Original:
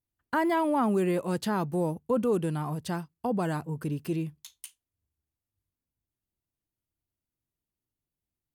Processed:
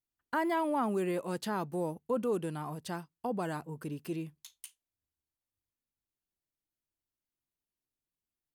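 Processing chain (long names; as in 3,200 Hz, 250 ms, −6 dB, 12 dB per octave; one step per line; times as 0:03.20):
parametric band 85 Hz −8.5 dB 2.2 octaves
level −4 dB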